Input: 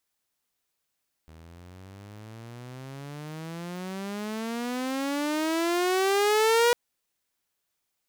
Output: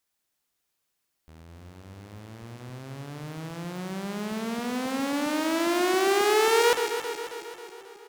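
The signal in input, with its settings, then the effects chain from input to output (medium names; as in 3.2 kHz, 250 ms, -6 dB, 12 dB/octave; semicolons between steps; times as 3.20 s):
gliding synth tone saw, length 5.45 s, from 78.5 Hz, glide +31.5 st, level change +29 dB, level -15.5 dB
backward echo that repeats 135 ms, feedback 74%, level -8 dB; echo from a far wall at 300 m, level -26 dB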